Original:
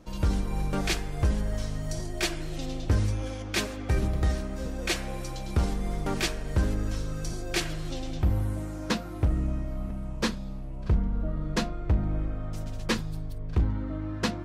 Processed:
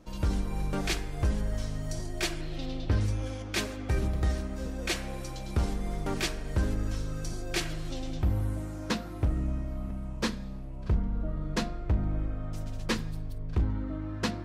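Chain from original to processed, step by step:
0:02.41–0:03.01: high shelf with overshoot 5,500 Hz −8 dB, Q 1.5
on a send: convolution reverb RT60 1.0 s, pre-delay 3 ms, DRR 17 dB
on the sum: level −2.5 dB

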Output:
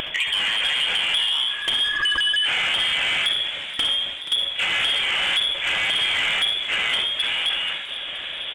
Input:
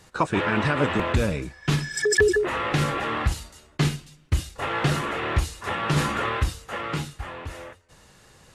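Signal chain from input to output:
high-shelf EQ 2,100 Hz −8.5 dB
mains-hum notches 50/100/150 Hz
in parallel at +0.5 dB: upward compression, threshold −23 dBFS
on the sum: brickwall limiter −11 dBFS, peak gain reduction 7 dB
downward compressor 12 to 1, threshold −21 dBFS, peak gain reduction 8 dB
voice inversion scrambler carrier 3,400 Hz
pitch vibrato 1.7 Hz 11 cents
soft clipping −19.5 dBFS, distortion −17 dB
on a send at −9 dB: convolution reverb RT60 0.35 s, pre-delay 62 ms
on the sum: transient designer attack 0 dB, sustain +6 dB
echo with shifted repeats 478 ms, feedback 64%, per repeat +70 Hz, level −13.5 dB
level +4 dB

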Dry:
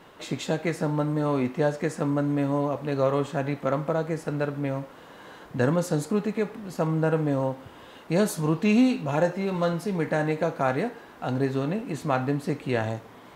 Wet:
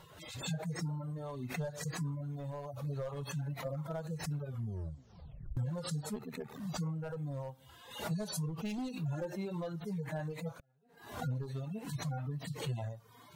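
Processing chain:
harmonic-percussive split with one part muted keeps harmonic
gain into a clipping stage and back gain 18 dB
0:04.40: tape stop 1.17 s
0:08.78–0:09.76: parametric band 320 Hz +12.5 dB 0.35 octaves
0:10.56–0:11.10: gate with flip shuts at −27 dBFS, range −36 dB
drawn EQ curve 140 Hz 0 dB, 290 Hz −17 dB, 590 Hz −9 dB, 2,400 Hz −12 dB, 3,500 Hz −7 dB, 12,000 Hz −1 dB
downward compressor 4 to 1, threshold −43 dBFS, peak gain reduction 14 dB
0:06.15–0:06.60: ring modulation 38 Hz
reverb reduction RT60 1.4 s
background raised ahead of every attack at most 89 dB per second
level +7.5 dB

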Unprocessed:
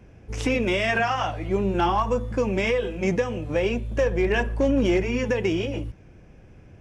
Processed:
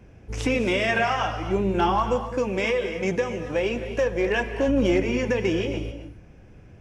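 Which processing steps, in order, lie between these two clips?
0:02.16–0:04.68: low-shelf EQ 200 Hz −6.5 dB
reverb whose tail is shaped and stops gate 300 ms rising, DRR 9 dB

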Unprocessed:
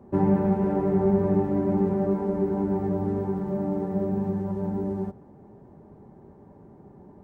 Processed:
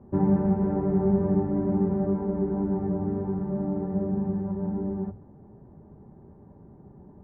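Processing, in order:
Chebyshev low-pass filter 1,600 Hz, order 2
low-shelf EQ 190 Hz +11.5 dB
mains-hum notches 50/100 Hz
level −4.5 dB

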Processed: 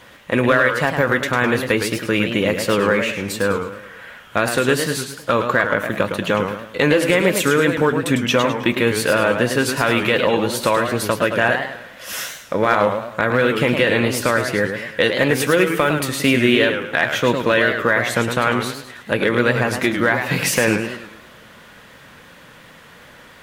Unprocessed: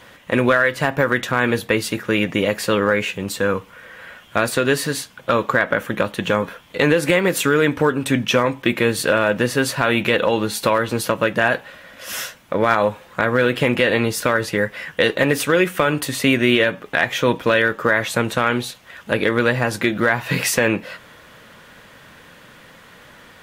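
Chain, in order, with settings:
feedback echo with a swinging delay time 106 ms, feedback 41%, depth 185 cents, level −7 dB

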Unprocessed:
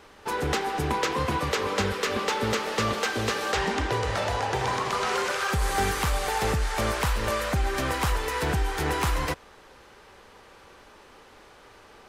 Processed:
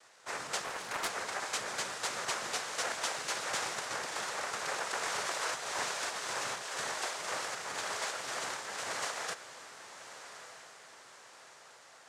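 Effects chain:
high-pass filter 1,000 Hz 12 dB per octave
cochlear-implant simulation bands 3
feedback delay with all-pass diffusion 1,211 ms, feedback 48%, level −12.5 dB
0:00.64–0:01.10: highs frequency-modulated by the lows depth 0.6 ms
level −5.5 dB

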